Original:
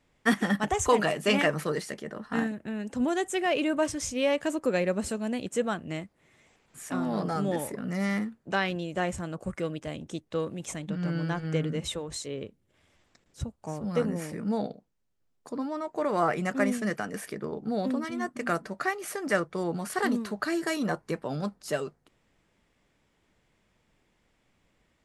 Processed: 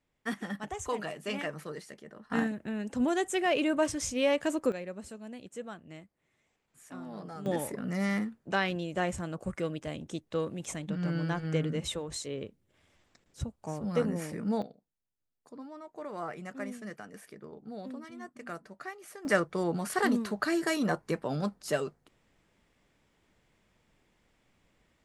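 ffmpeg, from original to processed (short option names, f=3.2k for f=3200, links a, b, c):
-af "asetnsamples=n=441:p=0,asendcmd='2.3 volume volume -1dB;4.72 volume volume -13dB;7.46 volume volume -1.5dB;14.62 volume volume -12.5dB;19.25 volume volume 0dB',volume=-11dB"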